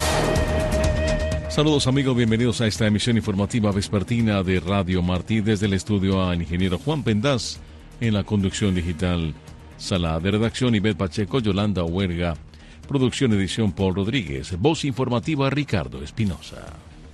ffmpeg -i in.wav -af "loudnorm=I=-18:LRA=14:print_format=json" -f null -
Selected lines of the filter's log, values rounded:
"input_i" : "-22.6",
"input_tp" : "-6.0",
"input_lra" : "3.9",
"input_thresh" : "-33.1",